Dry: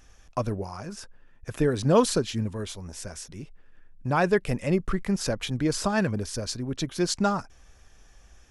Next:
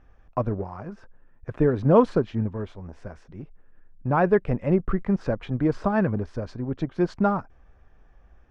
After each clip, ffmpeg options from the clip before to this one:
-filter_complex "[0:a]asplit=2[s0][s1];[s1]aeval=exprs='sgn(val(0))*max(abs(val(0))-0.0158,0)':c=same,volume=0.473[s2];[s0][s2]amix=inputs=2:normalize=0,lowpass=1400"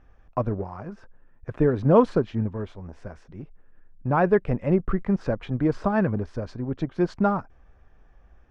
-af anull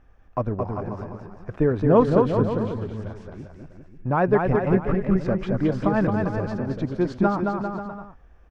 -filter_complex "[0:a]deesser=0.9,asplit=2[s0][s1];[s1]aecho=0:1:220|396|536.8|649.4|739.6:0.631|0.398|0.251|0.158|0.1[s2];[s0][s2]amix=inputs=2:normalize=0"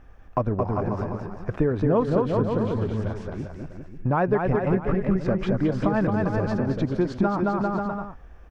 -af "acompressor=threshold=0.0447:ratio=3,volume=2"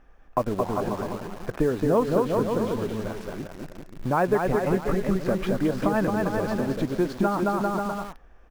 -filter_complex "[0:a]equalizer=f=84:w=0.97:g=-12.5,asplit=2[s0][s1];[s1]acrusher=bits=5:mix=0:aa=0.000001,volume=0.562[s2];[s0][s2]amix=inputs=2:normalize=0,volume=0.708"

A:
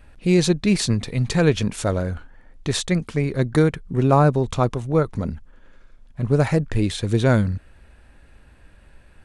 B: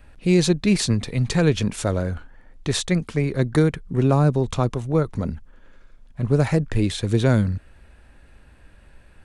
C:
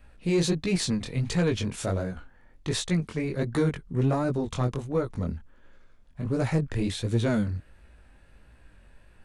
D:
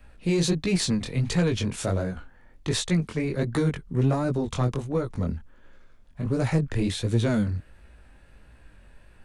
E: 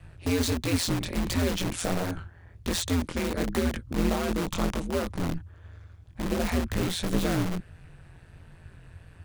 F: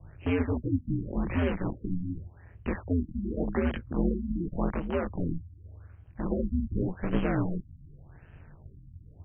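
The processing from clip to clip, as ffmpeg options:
-filter_complex "[0:a]acrossover=split=370|3000[s0][s1][s2];[s1]acompressor=threshold=0.0891:ratio=6[s3];[s0][s3][s2]amix=inputs=3:normalize=0"
-af "flanger=delay=16.5:depth=7.9:speed=1.4,asoftclip=type=tanh:threshold=0.237,volume=0.794"
-filter_complex "[0:a]acrossover=split=220|3000[s0][s1][s2];[s1]acompressor=threshold=0.0501:ratio=6[s3];[s0][s3][s2]amix=inputs=3:normalize=0,volume=1.33"
-filter_complex "[0:a]asplit=2[s0][s1];[s1]aeval=exprs='(mod(17.8*val(0)+1,2)-1)/17.8':c=same,volume=0.668[s2];[s0][s2]amix=inputs=2:normalize=0,aeval=exprs='val(0)*sin(2*PI*86*n/s)':c=same"
-af "afftfilt=real='re*lt(b*sr/1024,290*pow(3300/290,0.5+0.5*sin(2*PI*0.87*pts/sr)))':imag='im*lt(b*sr/1024,290*pow(3300/290,0.5+0.5*sin(2*PI*0.87*pts/sr)))':win_size=1024:overlap=0.75,volume=0.891"

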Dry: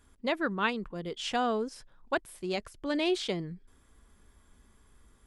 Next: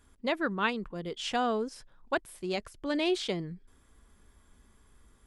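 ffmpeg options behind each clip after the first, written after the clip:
-af anull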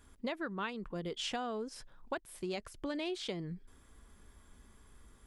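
-af "acompressor=threshold=0.0141:ratio=6,volume=1.19"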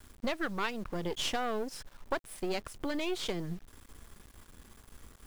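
-af "aeval=exprs='if(lt(val(0),0),0.251*val(0),val(0))':c=same,acrusher=bits=10:mix=0:aa=0.000001,volume=2.51"

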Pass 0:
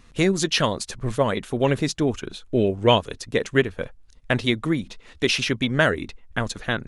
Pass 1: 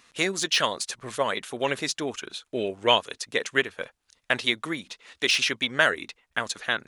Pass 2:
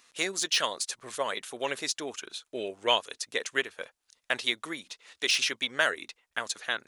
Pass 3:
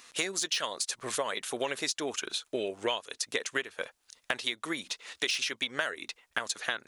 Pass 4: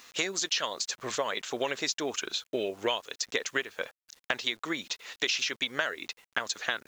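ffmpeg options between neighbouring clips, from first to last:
-af "highpass=f=1200:p=1,deesser=0.5,volume=1.33"
-af "bass=f=250:g=-9,treble=f=4000:g=5,volume=0.562"
-af "acompressor=threshold=0.0158:ratio=6,volume=2.37"
-af "aresample=16000,aresample=44100,acrusher=bits=9:mix=0:aa=0.000001,volume=1.19"

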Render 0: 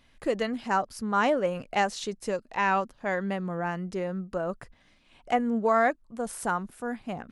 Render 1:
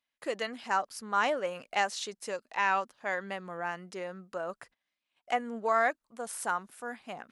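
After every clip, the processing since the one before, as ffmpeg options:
-af "highpass=f=940:p=1,agate=range=0.0891:threshold=0.00141:ratio=16:detection=peak"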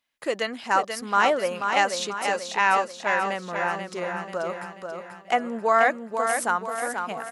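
-af "aecho=1:1:486|972|1458|1944|2430|2916:0.501|0.246|0.12|0.059|0.0289|0.0142,volume=2.24"

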